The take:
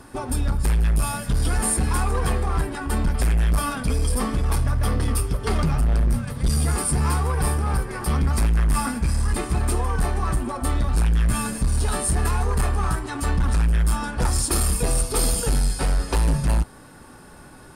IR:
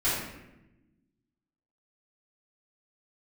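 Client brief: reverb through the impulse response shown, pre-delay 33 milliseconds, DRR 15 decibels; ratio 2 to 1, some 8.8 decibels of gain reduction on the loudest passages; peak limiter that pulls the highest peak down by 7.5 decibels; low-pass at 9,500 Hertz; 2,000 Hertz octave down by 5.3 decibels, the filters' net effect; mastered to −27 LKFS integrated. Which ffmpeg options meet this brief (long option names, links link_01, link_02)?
-filter_complex "[0:a]lowpass=9500,equalizer=frequency=2000:width_type=o:gain=-7.5,acompressor=threshold=-34dB:ratio=2,alimiter=level_in=4.5dB:limit=-24dB:level=0:latency=1,volume=-4.5dB,asplit=2[link_01][link_02];[1:a]atrim=start_sample=2205,adelay=33[link_03];[link_02][link_03]afir=irnorm=-1:irlink=0,volume=-26.5dB[link_04];[link_01][link_04]amix=inputs=2:normalize=0,volume=8dB"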